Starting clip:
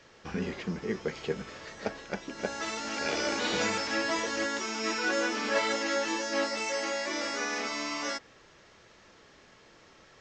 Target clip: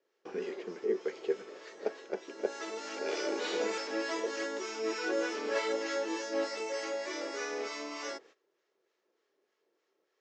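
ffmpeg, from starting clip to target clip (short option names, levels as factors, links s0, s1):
-filter_complex "[0:a]agate=range=0.126:threshold=0.00282:ratio=16:detection=peak,acrossover=split=910[s0][s1];[s0]aeval=exprs='val(0)*(1-0.5/2+0.5/2*cos(2*PI*3.3*n/s))':c=same[s2];[s1]aeval=exprs='val(0)*(1-0.5/2-0.5/2*cos(2*PI*3.3*n/s))':c=same[s3];[s2][s3]amix=inputs=2:normalize=0,highpass=f=390:t=q:w=4.1,volume=0.531"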